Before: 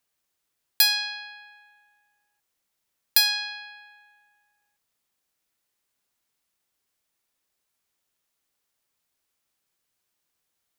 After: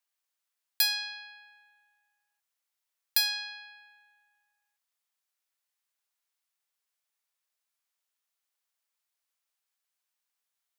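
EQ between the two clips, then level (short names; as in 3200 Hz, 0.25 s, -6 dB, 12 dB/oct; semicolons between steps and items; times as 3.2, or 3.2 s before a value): HPF 720 Hz 12 dB/oct; -6.5 dB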